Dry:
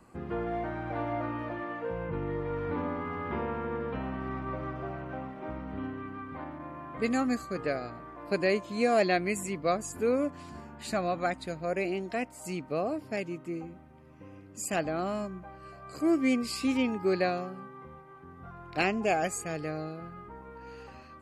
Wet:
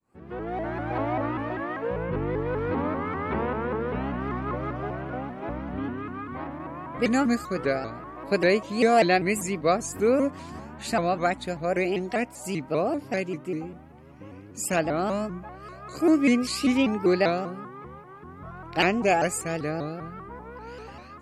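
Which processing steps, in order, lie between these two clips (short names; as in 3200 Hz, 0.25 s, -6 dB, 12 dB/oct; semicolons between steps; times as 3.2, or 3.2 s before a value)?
opening faded in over 0.82 s; shaped vibrato saw up 5.1 Hz, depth 160 cents; gain +5.5 dB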